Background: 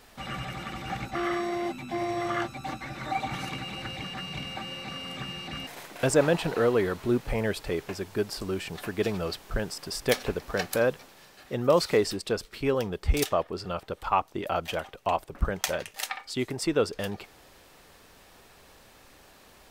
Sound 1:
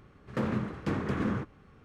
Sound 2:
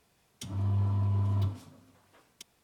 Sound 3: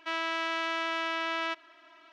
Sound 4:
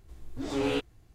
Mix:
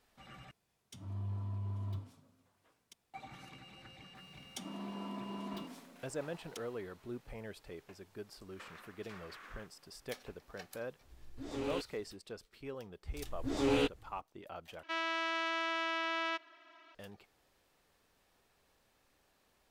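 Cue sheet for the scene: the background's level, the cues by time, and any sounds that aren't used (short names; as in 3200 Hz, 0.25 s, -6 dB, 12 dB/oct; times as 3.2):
background -18.5 dB
0.51 replace with 2 -11 dB
4.15 add 2 -1.5 dB + steep high-pass 170 Hz 96 dB/oct
8.23 add 1 -10.5 dB + HPF 1300 Hz
11.01 add 4 -10 dB
13.07 add 4 -1.5 dB
14.83 replace with 3 -4 dB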